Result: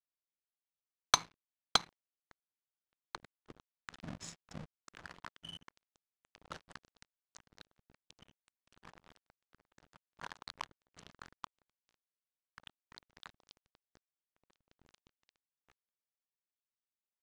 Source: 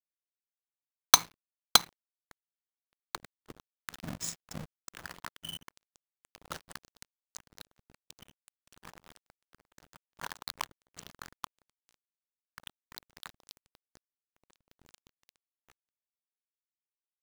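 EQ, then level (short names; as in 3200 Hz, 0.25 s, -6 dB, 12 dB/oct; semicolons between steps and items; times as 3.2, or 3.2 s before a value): air absorption 70 m; high shelf 11000 Hz -6.5 dB; -5.0 dB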